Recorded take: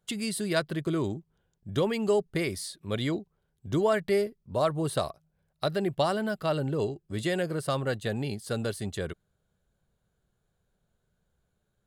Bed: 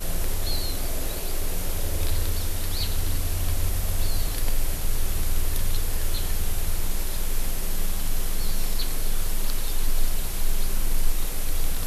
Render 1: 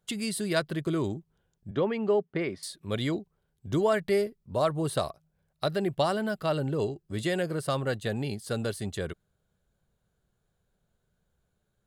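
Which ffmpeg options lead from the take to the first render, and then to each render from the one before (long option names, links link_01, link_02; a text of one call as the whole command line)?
ffmpeg -i in.wav -filter_complex "[0:a]asettb=1/sr,asplit=3[link_01][link_02][link_03];[link_01]atrim=end=1.714[link_04];[link_02]atrim=start=1.71:end=2.63,asetpts=PTS-STARTPTS,afade=type=in:duration=0.004:curve=qsin,afade=type=out:start_time=0.916:duration=0.004:curve=qsin,highpass=160,lowpass=2300[link_05];[link_03]atrim=start=2.626[link_06];[link_04][link_05]acrossfade=duration=0.004:curve1=hsin:curve2=qsin[link_07];[link_07][link_06]acrossfade=duration=0.004:curve1=qsin:curve2=hsin" out.wav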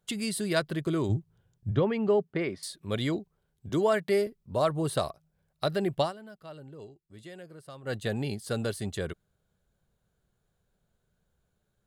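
ffmpeg -i in.wav -filter_complex "[0:a]asettb=1/sr,asplit=3[link_01][link_02][link_03];[link_01]atrim=end=1.094[link_04];[link_02]atrim=start=1.09:end=2.33,asetpts=PTS-STARTPTS,afade=type=in:duration=0.004:curve=qsin,afade=type=out:start_time=1.236:duration=0.004:curve=qsin,equalizer=frequency=110:width_type=o:width=0.77:gain=14.5[link_05];[link_03]atrim=start=2.326[link_06];[link_04][link_05]acrossfade=duration=0.004:curve1=hsin:curve2=qsin[link_07];[link_07][link_06]acrossfade=duration=0.004:curve1=qsin:curve2=hsin,asettb=1/sr,asplit=3[link_08][link_09][link_10];[link_08]atrim=end=3.694[link_11];[link_09]atrim=start=3.69:end=4.27,asetpts=PTS-STARTPTS,afade=type=in:duration=0.004:curve=qsin,afade=type=out:start_time=0.576:duration=0.004:curve=qsin,highpass=150[link_12];[link_10]atrim=start=4.266[link_13];[link_11][link_12]acrossfade=duration=0.004:curve1=hsin:curve2=qsin[link_14];[link_14][link_13]acrossfade=duration=0.004:curve1=qsin:curve2=hsin,asplit=3[link_15][link_16][link_17];[link_15]atrim=end=6.13,asetpts=PTS-STARTPTS,afade=type=out:start_time=6.01:duration=0.12:silence=0.141254[link_18];[link_16]atrim=start=6.13:end=7.83,asetpts=PTS-STARTPTS,volume=-17dB[link_19];[link_17]atrim=start=7.83,asetpts=PTS-STARTPTS,afade=type=in:duration=0.12:silence=0.141254[link_20];[link_18][link_19][link_20]concat=n=3:v=0:a=1" out.wav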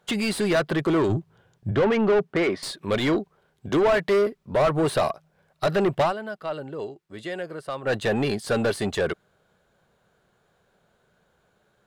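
ffmpeg -i in.wav -filter_complex "[0:a]asplit=2[link_01][link_02];[link_02]highpass=frequency=720:poles=1,volume=26dB,asoftclip=type=tanh:threshold=-12dB[link_03];[link_01][link_03]amix=inputs=2:normalize=0,lowpass=frequency=1600:poles=1,volume=-6dB" out.wav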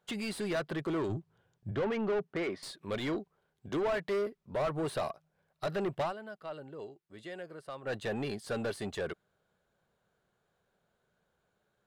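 ffmpeg -i in.wav -af "volume=-11.5dB" out.wav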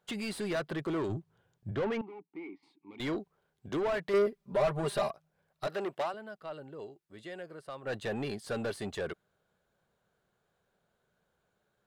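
ffmpeg -i in.wav -filter_complex "[0:a]asettb=1/sr,asplit=3[link_01][link_02][link_03];[link_01]atrim=end=2.014[link_04];[link_02]atrim=start=2.01:end=3,asetpts=PTS-STARTPTS,afade=type=in:duration=0.004:curve=qsin,afade=type=out:start_time=0.986:duration=0.004:curve=qsin,asplit=3[link_05][link_06][link_07];[link_05]bandpass=frequency=300:width_type=q:width=8,volume=0dB[link_08];[link_06]bandpass=frequency=870:width_type=q:width=8,volume=-6dB[link_09];[link_07]bandpass=frequency=2240:width_type=q:width=8,volume=-9dB[link_10];[link_08][link_09][link_10]amix=inputs=3:normalize=0[link_11];[link_03]atrim=start=2.996[link_12];[link_04][link_11]acrossfade=duration=0.004:curve1=hsin:curve2=qsin[link_13];[link_13][link_12]acrossfade=duration=0.004:curve1=qsin:curve2=hsin,asettb=1/sr,asplit=3[link_14][link_15][link_16];[link_14]atrim=end=4.134[link_17];[link_15]atrim=start=4.13:end=5.1,asetpts=PTS-STARTPTS,afade=type=in:duration=0.004:curve=qsin,afade=type=out:start_time=0.966:duration=0.004:curve=qsin,aecho=1:1:5:0.99,atrim=end_sample=42777[link_18];[link_16]atrim=start=5.096[link_19];[link_17][link_18]acrossfade=duration=0.004:curve1=hsin:curve2=qsin[link_20];[link_20][link_19]acrossfade=duration=0.004:curve1=qsin:curve2=hsin,asettb=1/sr,asplit=3[link_21][link_22][link_23];[link_21]atrim=end=5.674[link_24];[link_22]atrim=start=5.67:end=6.14,asetpts=PTS-STARTPTS,afade=type=in:duration=0.004:curve=qsin,afade=type=out:start_time=0.466:duration=0.004:curve=qsin,highpass=320[link_25];[link_23]atrim=start=6.136[link_26];[link_24][link_25]acrossfade=duration=0.004:curve1=hsin:curve2=qsin[link_27];[link_27][link_26]acrossfade=duration=0.004:curve1=qsin:curve2=hsin" out.wav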